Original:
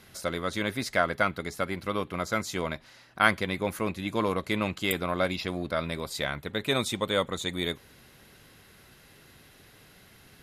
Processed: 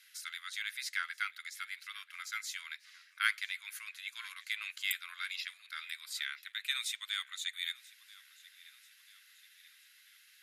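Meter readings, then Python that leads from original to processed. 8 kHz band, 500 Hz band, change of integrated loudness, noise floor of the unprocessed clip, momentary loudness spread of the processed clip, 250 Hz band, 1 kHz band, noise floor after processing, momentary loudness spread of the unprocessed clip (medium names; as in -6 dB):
-4.0 dB, under -40 dB, -9.0 dB, -56 dBFS, 21 LU, under -40 dB, -16.5 dB, -63 dBFS, 7 LU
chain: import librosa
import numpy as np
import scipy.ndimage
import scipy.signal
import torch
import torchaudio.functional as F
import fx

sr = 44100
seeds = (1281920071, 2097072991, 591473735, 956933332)

y = scipy.signal.sosfilt(scipy.signal.butter(6, 1600.0, 'highpass', fs=sr, output='sos'), x)
y = fx.echo_feedback(y, sr, ms=986, feedback_pct=49, wet_db=-21.0)
y = y * librosa.db_to_amplitude(-4.0)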